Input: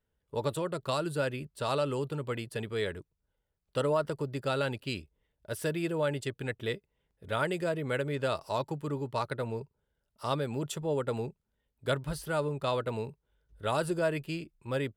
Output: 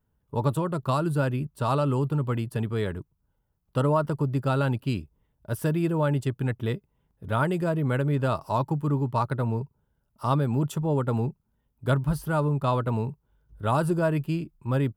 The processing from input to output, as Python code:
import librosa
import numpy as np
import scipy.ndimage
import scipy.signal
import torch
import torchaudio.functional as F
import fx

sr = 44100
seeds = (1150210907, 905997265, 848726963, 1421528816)

y = fx.graphic_eq(x, sr, hz=(125, 250, 500, 1000, 2000, 4000, 8000), db=(5, 3, -7, 4, -8, -8, -7))
y = F.gain(torch.from_numpy(y), 7.0).numpy()